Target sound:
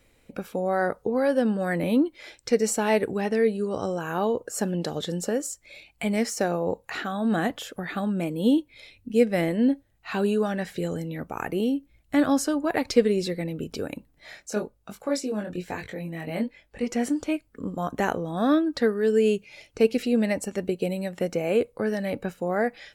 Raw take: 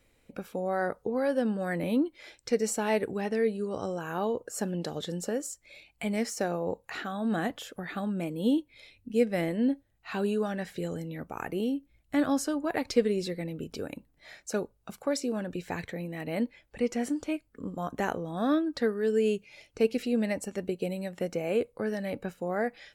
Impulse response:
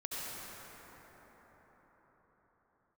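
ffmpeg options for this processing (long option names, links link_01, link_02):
-filter_complex "[0:a]asplit=3[link_01][link_02][link_03];[link_01]afade=type=out:start_time=14.43:duration=0.02[link_04];[link_02]flanger=delay=20:depth=4:speed=1.2,afade=type=in:start_time=14.43:duration=0.02,afade=type=out:start_time=16.86:duration=0.02[link_05];[link_03]afade=type=in:start_time=16.86:duration=0.02[link_06];[link_04][link_05][link_06]amix=inputs=3:normalize=0,volume=5dB"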